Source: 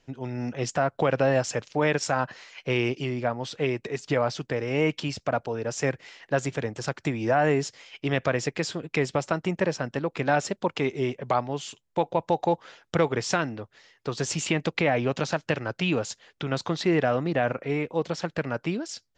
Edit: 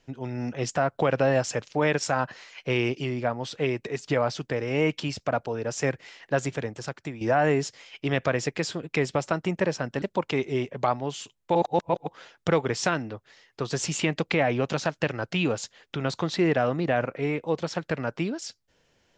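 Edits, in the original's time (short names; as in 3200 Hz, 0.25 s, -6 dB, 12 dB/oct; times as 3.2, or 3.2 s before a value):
6.46–7.21 fade out, to -10 dB
10.02–10.49 cut
12.02–12.54 reverse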